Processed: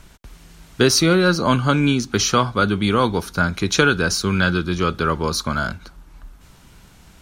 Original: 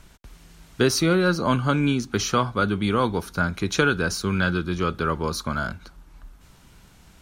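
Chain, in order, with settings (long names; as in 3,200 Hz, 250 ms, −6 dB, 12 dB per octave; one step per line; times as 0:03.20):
dynamic equaliser 5,000 Hz, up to +4 dB, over −43 dBFS, Q 0.76
level +4 dB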